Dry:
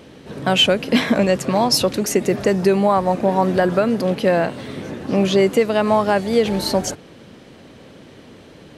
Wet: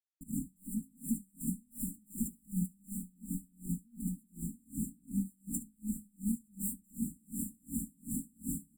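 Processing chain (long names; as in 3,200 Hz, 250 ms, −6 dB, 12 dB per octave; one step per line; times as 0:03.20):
stylus tracing distortion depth 0.17 ms
camcorder AGC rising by 66 dB per second
on a send: feedback delay with all-pass diffusion 666 ms, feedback 55%, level −11.5 dB
on the sum: noise gate with hold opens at −18 dBFS
parametric band 4,800 Hz +11 dB 1.8 octaves
fuzz pedal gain 30 dB, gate −37 dBFS
ambience of single reflections 18 ms −10 dB, 72 ms −7 dB
gate with flip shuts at −10 dBFS, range −25 dB
linear-phase brick-wall band-stop 330–7,200 Hz
parametric band 130 Hz −5.5 dB 1 octave
comb filter 4.7 ms, depth 85%
tremolo with a sine in dB 2.7 Hz, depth 36 dB
level +8.5 dB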